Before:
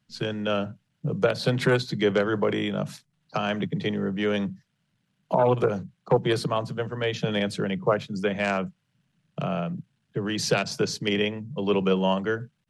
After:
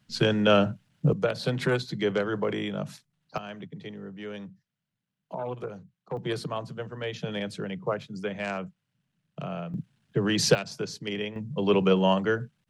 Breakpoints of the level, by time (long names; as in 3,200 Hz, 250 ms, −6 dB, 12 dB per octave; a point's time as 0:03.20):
+6 dB
from 0:01.13 −4 dB
from 0:03.38 −13 dB
from 0:06.17 −6.5 dB
from 0:09.74 +3 dB
from 0:10.55 −7.5 dB
from 0:11.36 +1 dB